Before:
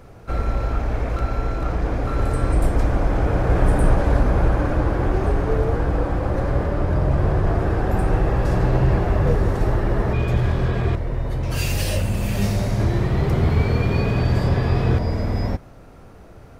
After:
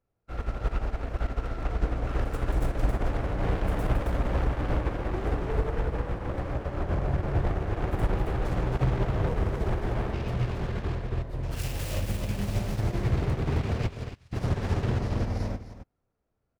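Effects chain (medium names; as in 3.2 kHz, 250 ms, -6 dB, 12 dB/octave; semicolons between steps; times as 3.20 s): self-modulated delay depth 0.83 ms; 13.87–14.33 s: amplifier tone stack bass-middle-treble 5-5-5; delay 270 ms -4 dB; peak limiter -11 dBFS, peak gain reduction 7 dB; upward expansion 2.5:1, over -38 dBFS; trim -3 dB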